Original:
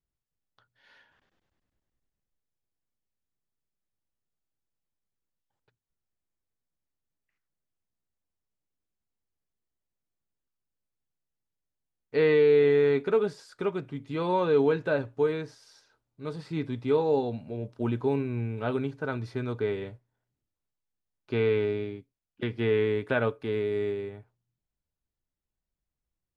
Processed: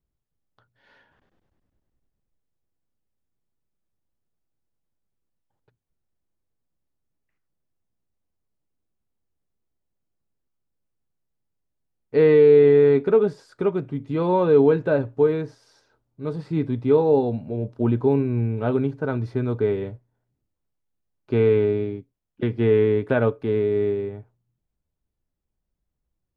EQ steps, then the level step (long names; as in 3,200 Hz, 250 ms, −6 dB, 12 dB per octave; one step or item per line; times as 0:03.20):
tilt shelving filter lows +6 dB, about 1,200 Hz
+2.5 dB